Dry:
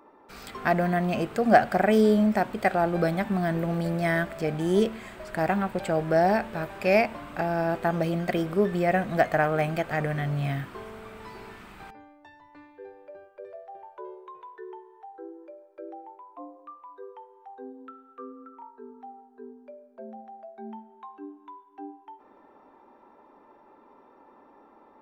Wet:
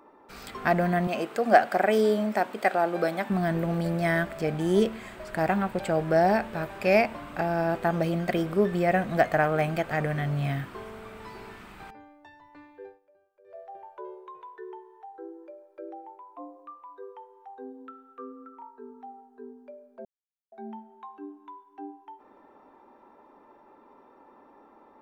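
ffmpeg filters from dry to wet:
ffmpeg -i in.wav -filter_complex "[0:a]asettb=1/sr,asplit=3[link_01][link_02][link_03];[link_01]atrim=end=1.074[link_04];[link_02]atrim=start=1.07:end=3.3,asetpts=PTS-STARTPTS,afade=type=in:duration=0.004:curve=qsin,afade=type=out:start_time=2.226:duration=0.004:curve=qsin,highpass=300[link_05];[link_03]atrim=start=3.296[link_06];[link_04][link_05]acrossfade=duration=0.004:curve1=hsin:curve2=qsin[link_07];[link_07][link_06]acrossfade=duration=0.004:curve1=qsin:curve2=hsin,asplit=5[link_08][link_09][link_10][link_11][link_12];[link_08]atrim=end=13,asetpts=PTS-STARTPTS,afade=type=out:start_time=12.85:duration=0.15:silence=0.125893[link_13];[link_09]atrim=start=13:end=13.44,asetpts=PTS-STARTPTS,volume=-18dB[link_14];[link_10]atrim=start=13.44:end=20.05,asetpts=PTS-STARTPTS,afade=type=in:duration=0.15:silence=0.125893,afade=type=out:start_time=6.606:duration=0.004:curve=hsin[link_15];[link_11]atrim=start=20.05:end=20.52,asetpts=PTS-STARTPTS,volume=0[link_16];[link_12]atrim=start=20.52,asetpts=PTS-STARTPTS,afade=type=in:duration=0.004:curve=hsin[link_17];[link_13][link_14][link_15][link_16][link_17]concat=n=5:v=0:a=1" out.wav

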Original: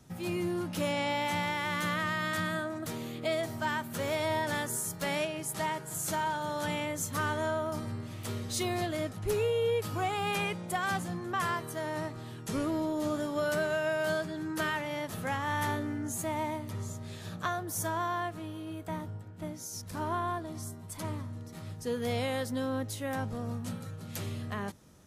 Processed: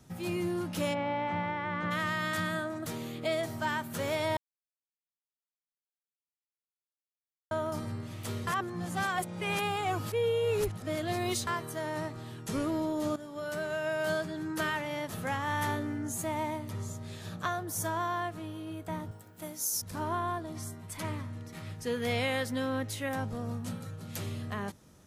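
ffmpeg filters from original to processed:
ffmpeg -i in.wav -filter_complex "[0:a]asplit=3[link_01][link_02][link_03];[link_01]afade=type=out:start_time=0.93:duration=0.02[link_04];[link_02]lowpass=1700,afade=type=in:start_time=0.93:duration=0.02,afade=type=out:start_time=1.9:duration=0.02[link_05];[link_03]afade=type=in:start_time=1.9:duration=0.02[link_06];[link_04][link_05][link_06]amix=inputs=3:normalize=0,asettb=1/sr,asplit=3[link_07][link_08][link_09];[link_07]atrim=end=19.114[link_10];[link_08]atrim=start=19.11:end=19.82,asetpts=PTS-STARTPTS,afade=type=in:duration=0.004:curve=qsin,afade=type=out:start_time=0.706:duration=0.004:curve=qsin,aemphasis=mode=production:type=bsi[link_11];[link_09]atrim=start=19.816[link_12];[link_10][link_11]acrossfade=duration=0.004:curve1=hsin:curve2=qsin[link_13];[link_13][link_12]acrossfade=duration=0.004:curve1=qsin:curve2=hsin,asettb=1/sr,asplit=3[link_14][link_15][link_16];[link_14]atrim=end=20.564[link_17];[link_15]atrim=start=20.56:end=23.09,asetpts=PTS-STARTPTS,afade=type=in:duration=0.004:curve=qsin,afade=type=out:start_time=2.526:duration=0.004:curve=qsin,equalizer=frequency=2200:width=1.1:gain=7[link_18];[link_16]atrim=start=23.086[link_19];[link_17][link_18]acrossfade=duration=0.004:curve1=hsin:curve2=qsin[link_20];[link_20][link_19]acrossfade=duration=0.004:curve1=qsin:curve2=hsin,asplit=6[link_21][link_22][link_23][link_24][link_25][link_26];[link_21]atrim=end=4.37,asetpts=PTS-STARTPTS,afade=type=out:start_time=4.366:duration=0.004:curve=hsin[link_27];[link_22]atrim=start=4.37:end=7.51,asetpts=PTS-STARTPTS,volume=0[link_28];[link_23]atrim=start=7.51:end=8.472,asetpts=PTS-STARTPTS,afade=type=in:duration=0.004:curve=hsin[link_29];[link_24]atrim=start=8.468:end=11.472,asetpts=PTS-STARTPTS,areverse[link_30];[link_25]atrim=start=11.468:end=13.16,asetpts=PTS-STARTPTS,afade=type=out:start_time=1.688:duration=0.004:curve=hsin:silence=0.223872[link_31];[link_26]atrim=start=13.16,asetpts=PTS-STARTPTS,afade=type=in:duration=0.96:silence=0.223872[link_32];[link_27][link_28][link_29]concat=n=3:v=0:a=1[link_33];[link_33][link_30]acrossfade=duration=0.004:curve1=hsin:curve2=hsin[link_34];[link_31][link_32]concat=n=2:v=0:a=1[link_35];[link_34][link_35]acrossfade=duration=0.004:curve1=hsin:curve2=hsin" out.wav

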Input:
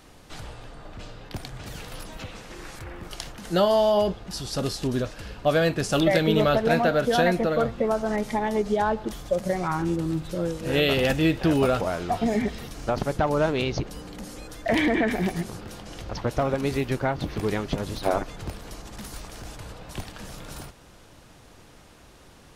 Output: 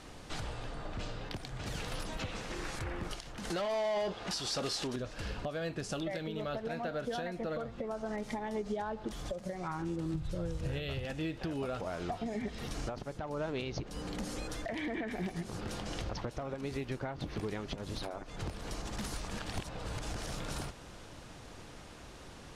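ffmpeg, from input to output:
ffmpeg -i in.wav -filter_complex "[0:a]asettb=1/sr,asplit=3[link_01][link_02][link_03];[link_01]atrim=end=3.504[link_04];[link_02]atrim=start=3.5:end=4.96,asetpts=PTS-STARTPTS,afade=type=in:duration=0.004:curve=qsin,afade=type=out:start_time=1.456:duration=0.004:curve=qsin,asplit=2[link_05][link_06];[link_06]highpass=frequency=720:poles=1,volume=19dB,asoftclip=type=tanh:threshold=-9.5dB[link_07];[link_05][link_07]amix=inputs=2:normalize=0,lowpass=frequency=7500:poles=1,volume=-6dB[link_08];[link_03]atrim=start=4.956[link_09];[link_04][link_08]acrossfade=duration=0.004:curve1=hsin:curve2=qsin[link_10];[link_10][link_09]acrossfade=duration=0.004:curve1=qsin:curve2=hsin,asettb=1/sr,asplit=3[link_11][link_12][link_13];[link_11]atrim=end=10.144[link_14];[link_12]atrim=start=10.14:end=11.05,asetpts=PTS-STARTPTS,afade=type=in:duration=0.004:curve=qsin,afade=type=out:start_time=0.906:duration=0.004:curve=qsin,lowshelf=frequency=150:width_type=q:width=1.5:gain=12[link_15];[link_13]atrim=start=11.046[link_16];[link_14][link_15]acrossfade=duration=0.004:curve1=hsin:curve2=qsin[link_17];[link_17][link_16]acrossfade=duration=0.004:curve1=qsin:curve2=hsin,asplit=3[link_18][link_19][link_20];[link_18]atrim=end=19.312[link_21];[link_19]atrim=start=19.308:end=20.272,asetpts=PTS-STARTPTS,areverse[link_22];[link_20]atrim=start=20.268[link_23];[link_21][link_22]acrossfade=duration=0.004:curve1=hsin:curve2=hsin[link_24];[link_24][link_23]acrossfade=duration=0.004:curve1=hsin:curve2=hsin,lowpass=9400,acompressor=threshold=-34dB:ratio=6,alimiter=level_in=4dB:limit=-24dB:level=0:latency=1:release=331,volume=-4dB,volume=1dB" out.wav

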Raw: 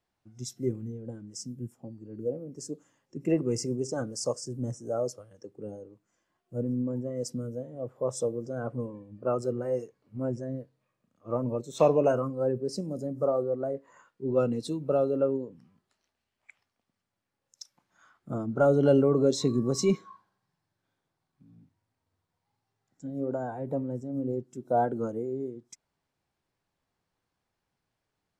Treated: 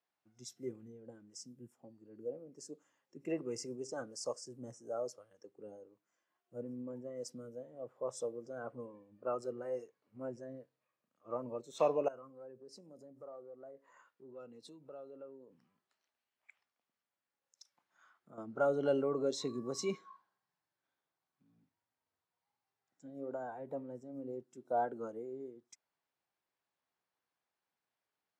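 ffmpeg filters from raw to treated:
ffmpeg -i in.wav -filter_complex "[0:a]asettb=1/sr,asplit=3[link_01][link_02][link_03];[link_01]atrim=end=12.084[link_04];[link_02]atrim=start=12.08:end=18.38,asetpts=PTS-STARTPTS,afade=type=in:duration=0.004:curve=qsin,afade=type=out:start_time=6.296:duration=0.004:curve=qsin,acompressor=threshold=-45dB:ratio=2.5:attack=3.2:release=140:knee=1:detection=peak[link_05];[link_03]atrim=start=18.376[link_06];[link_04][link_05]acrossfade=duration=0.004:curve1=hsin:curve2=qsin[link_07];[link_07][link_06]acrossfade=duration=0.004:curve1=qsin:curve2=hsin,highpass=frequency=760:poles=1,highshelf=frequency=4700:gain=-8,volume=-4dB" out.wav

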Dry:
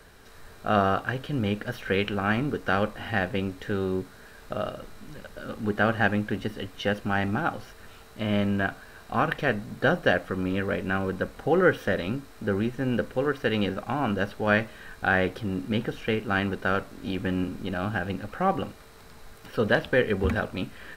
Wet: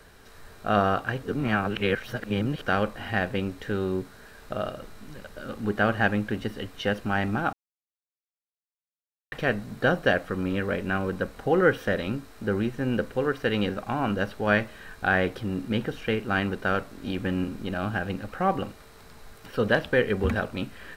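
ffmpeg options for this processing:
ffmpeg -i in.wav -filter_complex "[0:a]asplit=5[link_01][link_02][link_03][link_04][link_05];[link_01]atrim=end=1.232[link_06];[link_02]atrim=start=1.228:end=2.622,asetpts=PTS-STARTPTS,areverse[link_07];[link_03]atrim=start=2.618:end=7.53,asetpts=PTS-STARTPTS,afade=type=out:start_time=4.908:duration=0.004:curve=hsin[link_08];[link_04]atrim=start=7.53:end=9.32,asetpts=PTS-STARTPTS,volume=0[link_09];[link_05]atrim=start=9.32,asetpts=PTS-STARTPTS,afade=type=in:duration=0.004:curve=hsin[link_10];[link_06][link_07]acrossfade=duration=0.004:curve1=hsin:curve2=hsin[link_11];[link_08][link_09][link_10]concat=n=3:v=0:a=1[link_12];[link_11][link_12]acrossfade=duration=0.004:curve1=hsin:curve2=hsin" out.wav

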